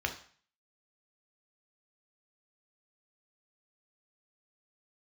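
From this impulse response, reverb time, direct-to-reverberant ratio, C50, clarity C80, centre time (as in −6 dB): 0.45 s, 4.5 dB, 11.0 dB, 15.5 dB, 12 ms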